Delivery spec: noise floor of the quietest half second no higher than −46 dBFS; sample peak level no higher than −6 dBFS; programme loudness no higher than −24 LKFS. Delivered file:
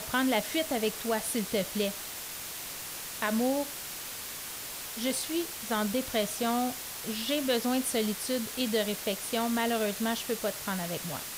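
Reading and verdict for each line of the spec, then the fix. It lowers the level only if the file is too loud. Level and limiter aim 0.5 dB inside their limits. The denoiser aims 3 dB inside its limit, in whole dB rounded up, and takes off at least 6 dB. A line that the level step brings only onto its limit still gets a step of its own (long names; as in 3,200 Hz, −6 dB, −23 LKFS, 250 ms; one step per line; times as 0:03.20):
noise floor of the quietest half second −40 dBFS: out of spec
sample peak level −15.0 dBFS: in spec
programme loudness −31.0 LKFS: in spec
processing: broadband denoise 9 dB, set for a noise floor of −40 dBFS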